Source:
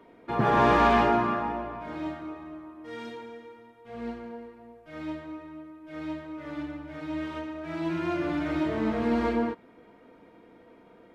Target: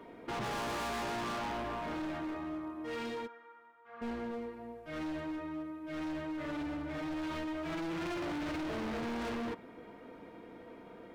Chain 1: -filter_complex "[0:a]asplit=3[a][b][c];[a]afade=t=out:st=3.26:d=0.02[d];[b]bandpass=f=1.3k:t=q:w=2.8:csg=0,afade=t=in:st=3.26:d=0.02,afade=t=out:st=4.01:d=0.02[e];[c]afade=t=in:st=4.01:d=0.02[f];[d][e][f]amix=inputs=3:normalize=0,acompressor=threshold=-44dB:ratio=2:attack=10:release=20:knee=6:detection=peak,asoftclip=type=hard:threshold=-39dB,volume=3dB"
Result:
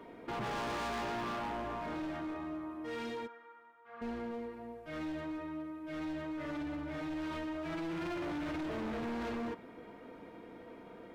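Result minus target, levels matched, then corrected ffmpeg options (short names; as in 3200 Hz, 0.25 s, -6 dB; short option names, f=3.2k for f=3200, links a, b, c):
compressor: peak gain reduction +5.5 dB
-filter_complex "[0:a]asplit=3[a][b][c];[a]afade=t=out:st=3.26:d=0.02[d];[b]bandpass=f=1.3k:t=q:w=2.8:csg=0,afade=t=in:st=3.26:d=0.02,afade=t=out:st=4.01:d=0.02[e];[c]afade=t=in:st=4.01:d=0.02[f];[d][e][f]amix=inputs=3:normalize=0,acompressor=threshold=-33dB:ratio=2:attack=10:release=20:knee=6:detection=peak,asoftclip=type=hard:threshold=-39dB,volume=3dB"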